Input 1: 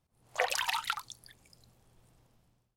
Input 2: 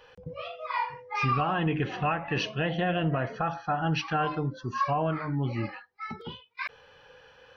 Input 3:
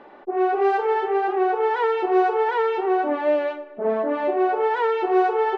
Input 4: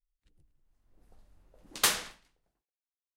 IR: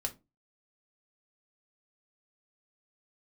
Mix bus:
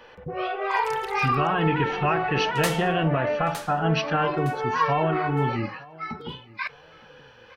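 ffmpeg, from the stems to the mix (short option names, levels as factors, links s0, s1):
-filter_complex "[0:a]aeval=exprs='sgn(val(0))*max(abs(val(0))-0.00119,0)':c=same,adelay=350,volume=0.335[s0];[1:a]volume=1.26,asplit=3[s1][s2][s3];[s2]volume=0.251[s4];[s3]volume=0.0891[s5];[2:a]lowpass=f=2700:t=q:w=1.6,equalizer=f=370:w=0.5:g=-9,volume=0.531,asplit=3[s6][s7][s8];[s7]volume=0.473[s9];[s8]volume=0.0668[s10];[3:a]tiltshelf=f=970:g=4.5,aeval=exprs='val(0)+0.00178*(sin(2*PI*50*n/s)+sin(2*PI*2*50*n/s)/2+sin(2*PI*3*50*n/s)/3+sin(2*PI*4*50*n/s)/4+sin(2*PI*5*50*n/s)/5)':c=same,adelay=800,volume=0.841,asplit=2[s11][s12];[s12]volume=0.376[s13];[4:a]atrim=start_sample=2205[s14];[s4][s9]amix=inputs=2:normalize=0[s15];[s15][s14]afir=irnorm=-1:irlink=0[s16];[s5][s10][s13]amix=inputs=3:normalize=0,aecho=0:1:912|1824|2736|3648:1|0.26|0.0676|0.0176[s17];[s0][s1][s6][s11][s16][s17]amix=inputs=6:normalize=0"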